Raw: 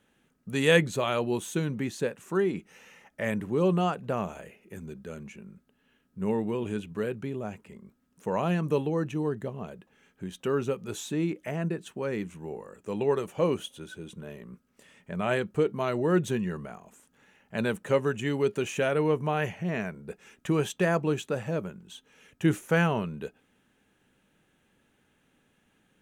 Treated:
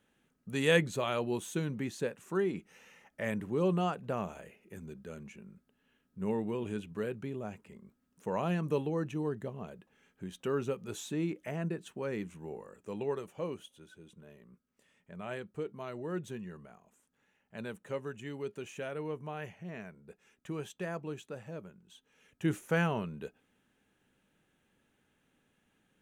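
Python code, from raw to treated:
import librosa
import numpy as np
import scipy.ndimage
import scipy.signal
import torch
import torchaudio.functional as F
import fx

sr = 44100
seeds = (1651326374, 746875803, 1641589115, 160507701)

y = fx.gain(x, sr, db=fx.line((12.66, -5.0), (13.59, -13.0), (21.73, -13.0), (22.65, -5.5)))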